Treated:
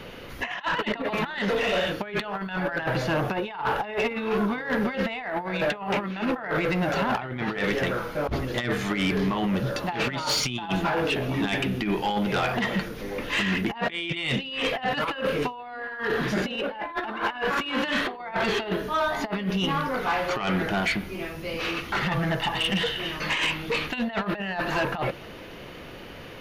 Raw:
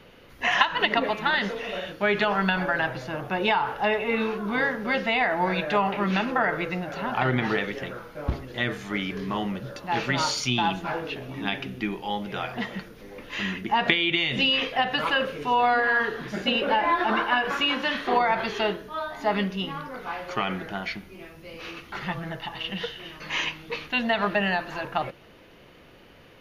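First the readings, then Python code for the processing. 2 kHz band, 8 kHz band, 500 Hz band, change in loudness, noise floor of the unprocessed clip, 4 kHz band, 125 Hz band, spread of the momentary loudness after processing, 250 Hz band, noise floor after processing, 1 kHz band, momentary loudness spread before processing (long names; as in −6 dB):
−2.0 dB, +2.5 dB, +0.5 dB, −1.0 dB, −51 dBFS, −2.0 dB, +3.0 dB, 6 LU, +2.0 dB, −41 dBFS, −3.0 dB, 12 LU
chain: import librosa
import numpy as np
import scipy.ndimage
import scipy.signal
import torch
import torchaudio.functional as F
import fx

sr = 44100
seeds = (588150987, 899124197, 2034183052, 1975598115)

y = fx.dynamic_eq(x, sr, hz=6100.0, q=1.6, threshold_db=-49.0, ratio=4.0, max_db=-6)
y = fx.over_compress(y, sr, threshold_db=-30.0, ratio=-0.5)
y = 10.0 ** (-24.5 / 20.0) * np.tanh(y / 10.0 ** (-24.5 / 20.0))
y = F.gain(torch.from_numpy(y), 6.0).numpy()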